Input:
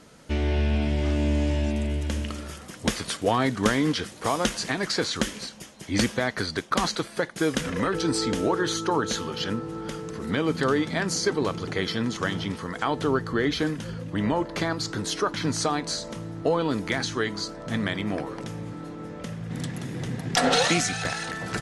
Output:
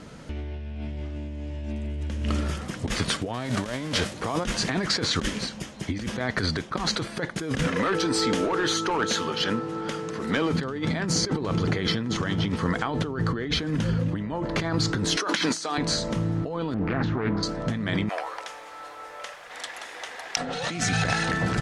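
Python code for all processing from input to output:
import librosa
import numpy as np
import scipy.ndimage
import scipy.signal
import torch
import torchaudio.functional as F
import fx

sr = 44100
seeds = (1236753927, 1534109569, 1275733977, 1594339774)

y = fx.envelope_flatten(x, sr, power=0.6, at=(3.33, 4.12), fade=0.02)
y = fx.peak_eq(y, sr, hz=590.0, db=12.5, octaves=0.22, at=(3.33, 4.12), fade=0.02)
y = fx.chain(y, sr, fx.highpass(hz=490.0, slope=6),
    fx.clip_hard(threshold_db=-23.5), at=(7.67, 10.53))
y = fx.chain(y, sr, fx.bessel_highpass(hz=340.0, order=4),
    fx.high_shelf(hz=2100.0, db=9.5),
    fx.over_compress(threshold_db=-33.0, ratio=-1.0), at=(15.17, 15.78))
y = fx.chain(y, sr, fx.lowpass(hz=1600.0, slope=12),
    fx.doppler_dist(depth_ms=0.43), at=(16.74, 17.43))
y = fx.chain(y, sr, fx.highpass(hz=670.0, slope=24),
    fx.quant_dither(seeds[0], bits=10, dither='triangular'), at=(18.09, 20.37))
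y = scipy.signal.sosfilt(scipy.signal.butter(2, 9200.0, 'lowpass', fs=sr, output='sos'), y)
y = fx.bass_treble(y, sr, bass_db=5, treble_db=-4)
y = fx.over_compress(y, sr, threshold_db=-29.0, ratio=-1.0)
y = y * 10.0 ** (2.0 / 20.0)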